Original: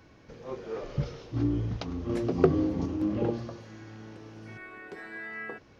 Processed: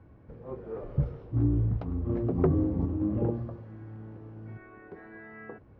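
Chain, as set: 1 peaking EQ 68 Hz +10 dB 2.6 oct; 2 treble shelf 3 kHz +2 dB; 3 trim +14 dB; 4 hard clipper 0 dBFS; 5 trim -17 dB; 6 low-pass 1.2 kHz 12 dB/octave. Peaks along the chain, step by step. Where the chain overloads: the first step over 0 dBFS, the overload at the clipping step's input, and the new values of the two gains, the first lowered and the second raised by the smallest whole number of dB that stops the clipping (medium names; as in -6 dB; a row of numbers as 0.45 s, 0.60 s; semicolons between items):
-6.0 dBFS, -6.0 dBFS, +8.0 dBFS, 0.0 dBFS, -17.0 dBFS, -16.5 dBFS; step 3, 8.0 dB; step 3 +6 dB, step 5 -9 dB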